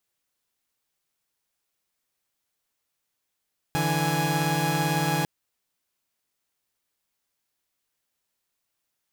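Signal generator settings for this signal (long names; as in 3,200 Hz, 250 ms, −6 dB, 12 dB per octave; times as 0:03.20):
held notes D3/E3/G#5 saw, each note −24.5 dBFS 1.50 s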